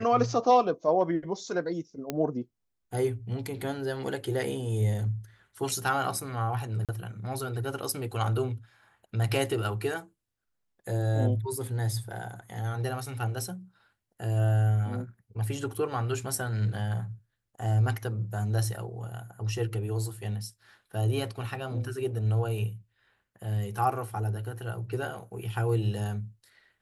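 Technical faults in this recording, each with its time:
0:02.10: click −15 dBFS
0:06.85–0:06.89: drop-out 37 ms

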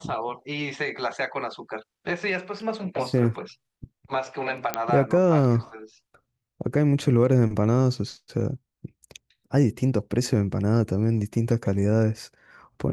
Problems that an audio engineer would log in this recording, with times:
0:04.74: click −8 dBFS

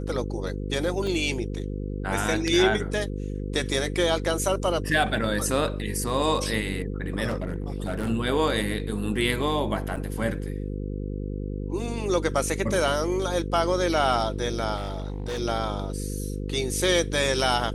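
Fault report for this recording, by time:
mains buzz 50 Hz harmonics 10 −31 dBFS
0:01.07: drop-out 2.5 ms
0:07.28–0:08.10: clipping −23.5 dBFS
0:09.96–0:09.97: drop-out 6.2 ms
0:14.76–0:15.40: clipping −26.5 dBFS

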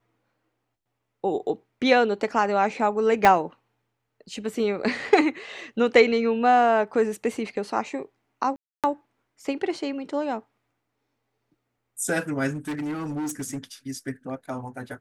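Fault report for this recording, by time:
0:03.25: click −5 dBFS
0:08.56–0:08.84: drop-out 277 ms
0:12.50–0:13.58: clipping −26.5 dBFS

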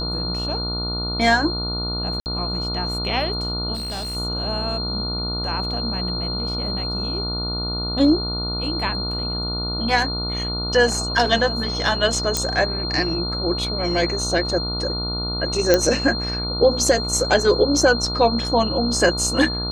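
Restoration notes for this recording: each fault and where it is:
mains buzz 60 Hz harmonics 24 −28 dBFS
whistle 4,200 Hz −26 dBFS
0:02.20–0:02.26: drop-out 59 ms
0:03.74–0:04.17: clipping −25.5 dBFS
0:12.37: click −5 dBFS
0:15.74: click −2 dBFS

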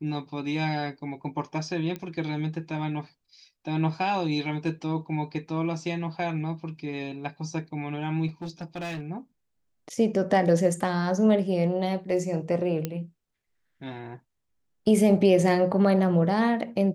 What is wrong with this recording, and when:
0:01.96: click −21 dBFS
0:08.27–0:09.01: clipping −30.5 dBFS
0:12.85: click −14 dBFS

